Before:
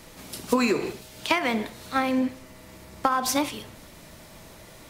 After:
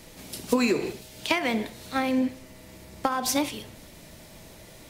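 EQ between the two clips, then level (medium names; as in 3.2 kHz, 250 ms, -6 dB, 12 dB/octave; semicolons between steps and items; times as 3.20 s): peaking EQ 1.2 kHz -6 dB 0.87 oct; 0.0 dB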